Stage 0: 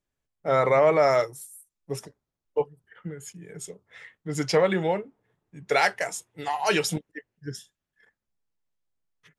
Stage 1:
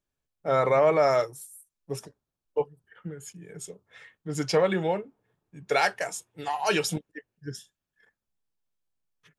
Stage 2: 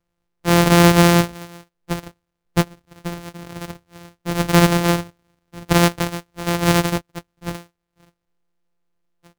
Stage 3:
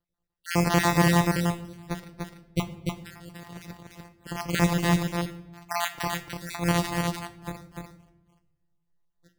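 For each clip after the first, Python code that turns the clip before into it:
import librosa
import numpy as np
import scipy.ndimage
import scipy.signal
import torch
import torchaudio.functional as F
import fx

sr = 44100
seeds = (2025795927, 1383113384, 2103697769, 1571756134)

y1 = fx.notch(x, sr, hz=2000.0, q=11.0)
y1 = y1 * librosa.db_to_amplitude(-1.5)
y2 = np.r_[np.sort(y1[:len(y1) // 256 * 256].reshape(-1, 256), axis=1).ravel(), y1[len(y1) // 256 * 256:]]
y2 = y2 * librosa.db_to_amplitude(9.0)
y3 = fx.spec_dropout(y2, sr, seeds[0], share_pct=46)
y3 = y3 + 10.0 ** (-3.5 / 20.0) * np.pad(y3, (int(295 * sr / 1000.0), 0))[:len(y3)]
y3 = fx.room_shoebox(y3, sr, seeds[1], volume_m3=340.0, walls='mixed', distance_m=0.37)
y3 = y3 * librosa.db_to_amplitude(-8.0)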